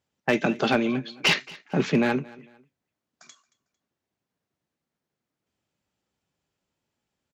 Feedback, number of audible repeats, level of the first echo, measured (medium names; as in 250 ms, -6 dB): 32%, 2, -22.0 dB